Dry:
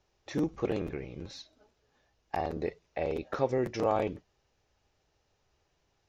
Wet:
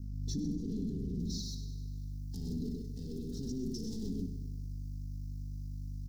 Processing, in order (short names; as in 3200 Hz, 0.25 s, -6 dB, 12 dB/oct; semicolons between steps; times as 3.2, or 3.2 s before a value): soft clip -28.5 dBFS, distortion -9 dB; comb 4.6 ms, depth 83%; hum 50 Hz, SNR 13 dB; tapped delay 58/127 ms -10/-5.5 dB; sample leveller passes 2; limiter -28 dBFS, peak gain reduction 7 dB; feedback echo 99 ms, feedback 58%, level -11.5 dB; added noise blue -72 dBFS; high shelf 4500 Hz -9.5 dB, from 1.19 s -2 dB; elliptic band-stop 290–4900 Hz, stop band 40 dB; backwards sustainer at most 26 dB/s